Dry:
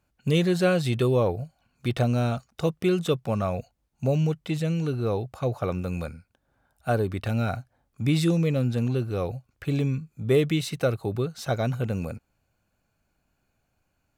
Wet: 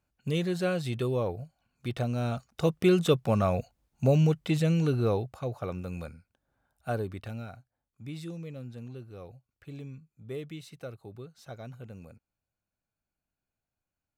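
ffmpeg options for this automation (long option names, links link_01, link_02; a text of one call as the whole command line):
ffmpeg -i in.wav -af "volume=1dB,afade=type=in:start_time=2.15:duration=0.73:silence=0.398107,afade=type=out:start_time=4.99:duration=0.45:silence=0.398107,afade=type=out:start_time=6.98:duration=0.54:silence=0.316228" out.wav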